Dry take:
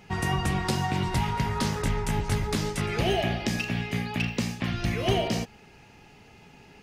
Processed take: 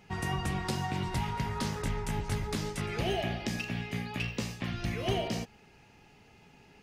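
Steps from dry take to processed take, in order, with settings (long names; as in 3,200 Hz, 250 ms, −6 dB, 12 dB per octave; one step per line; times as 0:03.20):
0:04.12–0:04.64: double-tracking delay 15 ms −5 dB
level −6 dB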